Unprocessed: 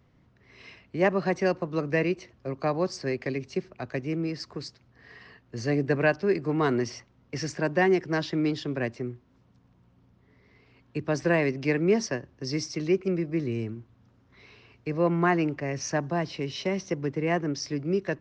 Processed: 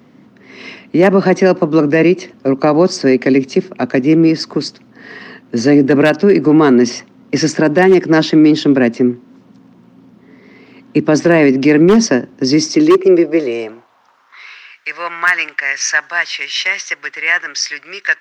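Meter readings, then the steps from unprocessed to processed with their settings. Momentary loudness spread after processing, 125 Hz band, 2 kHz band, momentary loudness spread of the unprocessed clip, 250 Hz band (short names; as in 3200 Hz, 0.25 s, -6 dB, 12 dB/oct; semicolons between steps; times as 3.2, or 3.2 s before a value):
12 LU, +10.0 dB, +16.0 dB, 12 LU, +17.0 dB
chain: high-pass sweep 230 Hz -> 1700 Hz, 12.57–14.73; wavefolder -12.5 dBFS; maximiser +17.5 dB; gain -1 dB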